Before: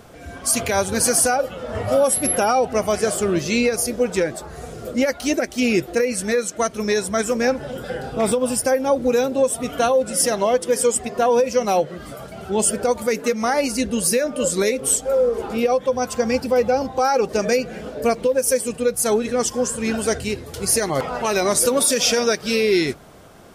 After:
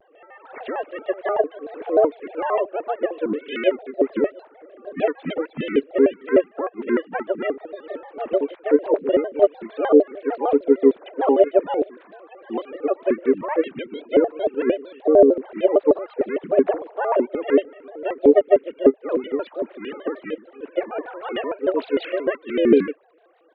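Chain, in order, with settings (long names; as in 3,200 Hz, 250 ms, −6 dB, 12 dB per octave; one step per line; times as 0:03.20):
three sine waves on the formant tracks
pitch-shifted copies added −7 semitones −4 dB, +3 semitones −13 dB
pitch modulation by a square or saw wave square 6.6 Hz, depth 250 cents
level −2.5 dB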